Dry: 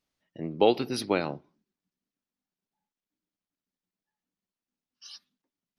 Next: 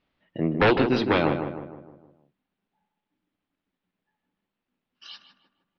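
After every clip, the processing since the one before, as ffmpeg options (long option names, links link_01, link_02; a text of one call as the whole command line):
ffmpeg -i in.wav -filter_complex "[0:a]aeval=exprs='0.398*sin(PI/2*3.98*val(0)/0.398)':channel_layout=same,lowpass=frequency=3400:width=0.5412,lowpass=frequency=3400:width=1.3066,asplit=2[link_01][link_02];[link_02]adelay=155,lowpass=frequency=1700:poles=1,volume=-7dB,asplit=2[link_03][link_04];[link_04]adelay=155,lowpass=frequency=1700:poles=1,volume=0.5,asplit=2[link_05][link_06];[link_06]adelay=155,lowpass=frequency=1700:poles=1,volume=0.5,asplit=2[link_07][link_08];[link_08]adelay=155,lowpass=frequency=1700:poles=1,volume=0.5,asplit=2[link_09][link_10];[link_10]adelay=155,lowpass=frequency=1700:poles=1,volume=0.5,asplit=2[link_11][link_12];[link_12]adelay=155,lowpass=frequency=1700:poles=1,volume=0.5[link_13];[link_03][link_05][link_07][link_09][link_11][link_13]amix=inputs=6:normalize=0[link_14];[link_01][link_14]amix=inputs=2:normalize=0,volume=-5.5dB" out.wav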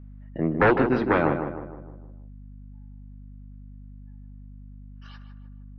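ffmpeg -i in.wav -af "highshelf=frequency=2400:width_type=q:width=1.5:gain=-11.5,aeval=exprs='val(0)+0.00794*(sin(2*PI*50*n/s)+sin(2*PI*2*50*n/s)/2+sin(2*PI*3*50*n/s)/3+sin(2*PI*4*50*n/s)/4+sin(2*PI*5*50*n/s)/5)':channel_layout=same" out.wav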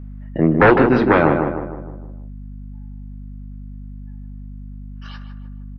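ffmpeg -i in.wav -filter_complex "[0:a]asplit=2[link_01][link_02];[link_02]alimiter=limit=-18dB:level=0:latency=1,volume=-0.5dB[link_03];[link_01][link_03]amix=inputs=2:normalize=0,asplit=2[link_04][link_05];[link_05]adelay=25,volume=-14dB[link_06];[link_04][link_06]amix=inputs=2:normalize=0,volume=4dB" out.wav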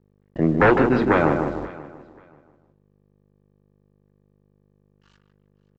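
ffmpeg -i in.wav -af "agate=range=-11dB:threshold=-26dB:ratio=16:detection=peak,aresample=16000,aeval=exprs='sgn(val(0))*max(abs(val(0))-0.00708,0)':channel_layout=same,aresample=44100,aecho=1:1:534|1068:0.1|0.021,volume=-4dB" out.wav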